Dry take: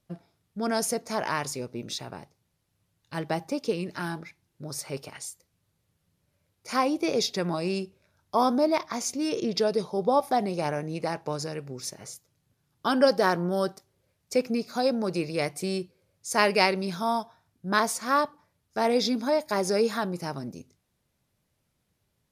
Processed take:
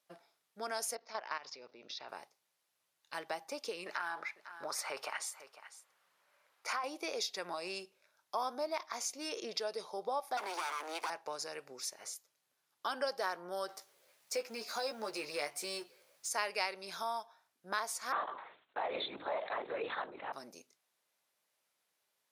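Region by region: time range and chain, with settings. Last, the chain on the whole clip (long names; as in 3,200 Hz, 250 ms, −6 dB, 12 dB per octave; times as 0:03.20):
0:00.95–0:02.09: Butterworth low-pass 5,500 Hz 48 dB per octave + output level in coarse steps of 14 dB
0:03.86–0:06.84: parametric band 1,200 Hz +14.5 dB 2.6 octaves + downward compressor, threshold −24 dBFS + single-tap delay 501 ms −18.5 dB
0:10.37–0:11.10: lower of the sound and its delayed copy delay 0.87 ms + Butterworth high-pass 220 Hz 96 dB per octave + leveller curve on the samples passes 2
0:13.68–0:16.29: mu-law and A-law mismatch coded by mu + double-tracking delay 14 ms −5.5 dB
0:18.12–0:20.33: linear-prediction vocoder at 8 kHz whisper + level that may fall only so fast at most 90 dB per second
whole clip: high-pass filter 680 Hz 12 dB per octave; downward compressor 2 to 1, threshold −38 dBFS; level −1.5 dB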